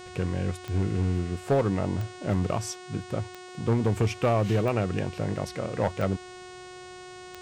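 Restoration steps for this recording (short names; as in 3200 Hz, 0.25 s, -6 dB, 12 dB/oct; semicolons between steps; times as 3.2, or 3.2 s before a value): clip repair -17.5 dBFS; de-click; de-hum 365.2 Hz, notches 25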